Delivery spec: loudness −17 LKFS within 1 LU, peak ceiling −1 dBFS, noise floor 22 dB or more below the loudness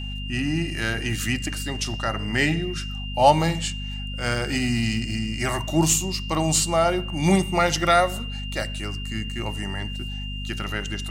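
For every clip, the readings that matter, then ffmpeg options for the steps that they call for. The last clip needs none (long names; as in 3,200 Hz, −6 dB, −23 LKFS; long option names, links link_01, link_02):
mains hum 50 Hz; hum harmonics up to 250 Hz; level of the hum −29 dBFS; interfering tone 2,800 Hz; level of the tone −35 dBFS; integrated loudness −24.0 LKFS; sample peak −3.5 dBFS; target loudness −17.0 LKFS
→ -af "bandreject=frequency=50:width_type=h:width=6,bandreject=frequency=100:width_type=h:width=6,bandreject=frequency=150:width_type=h:width=6,bandreject=frequency=200:width_type=h:width=6,bandreject=frequency=250:width_type=h:width=6"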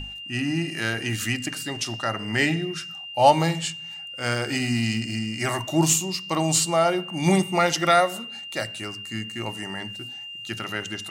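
mains hum none found; interfering tone 2,800 Hz; level of the tone −35 dBFS
→ -af "bandreject=frequency=2800:width=30"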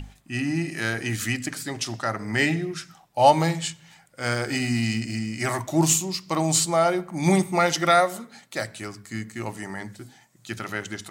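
interfering tone none found; integrated loudness −24.5 LKFS; sample peak −3.5 dBFS; target loudness −17.0 LKFS
→ -af "volume=7.5dB,alimiter=limit=-1dB:level=0:latency=1"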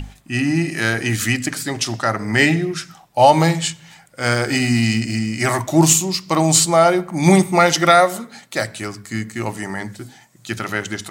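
integrated loudness −17.5 LKFS; sample peak −1.0 dBFS; background noise floor −50 dBFS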